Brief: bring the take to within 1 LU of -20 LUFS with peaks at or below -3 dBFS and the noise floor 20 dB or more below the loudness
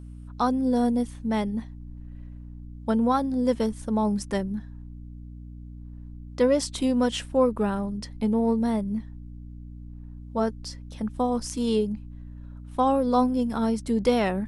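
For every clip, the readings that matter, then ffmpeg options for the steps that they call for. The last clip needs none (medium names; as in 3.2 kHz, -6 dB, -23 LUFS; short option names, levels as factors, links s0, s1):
hum 60 Hz; highest harmonic 300 Hz; hum level -38 dBFS; loudness -26.0 LUFS; peak level -9.5 dBFS; loudness target -20.0 LUFS
-> -af "bandreject=f=60:t=h:w=4,bandreject=f=120:t=h:w=4,bandreject=f=180:t=h:w=4,bandreject=f=240:t=h:w=4,bandreject=f=300:t=h:w=4"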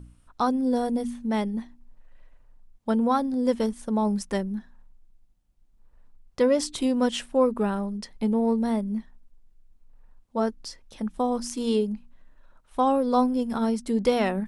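hum not found; loudness -26.0 LUFS; peak level -10.0 dBFS; loudness target -20.0 LUFS
-> -af "volume=2"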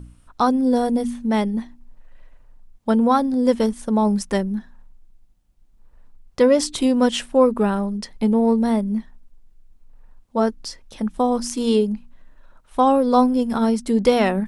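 loudness -20.0 LUFS; peak level -4.0 dBFS; noise floor -55 dBFS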